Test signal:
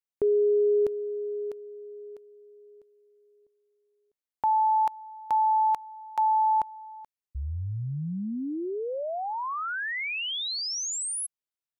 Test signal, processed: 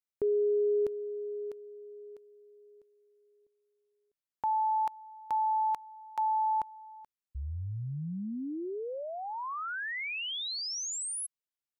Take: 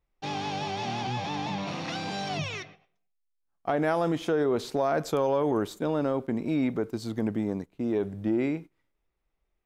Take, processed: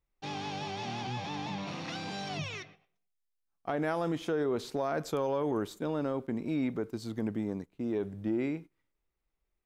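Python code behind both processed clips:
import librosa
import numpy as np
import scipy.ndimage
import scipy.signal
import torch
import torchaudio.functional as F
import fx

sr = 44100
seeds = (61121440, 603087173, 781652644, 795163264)

y = fx.peak_eq(x, sr, hz=680.0, db=-2.5, octaves=0.77)
y = y * 10.0 ** (-4.5 / 20.0)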